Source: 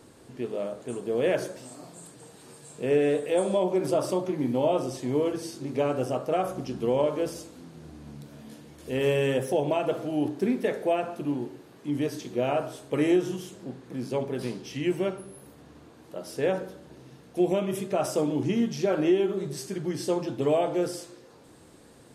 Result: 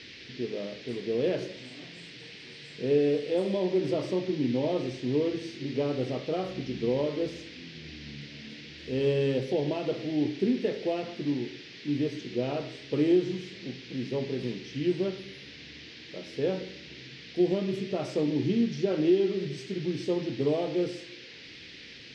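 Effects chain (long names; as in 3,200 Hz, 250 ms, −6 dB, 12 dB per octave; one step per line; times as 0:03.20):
flat-topped bell 1,200 Hz −8.5 dB 2.3 octaves
noise in a band 1,800–5,400 Hz −44 dBFS
high-frequency loss of the air 160 metres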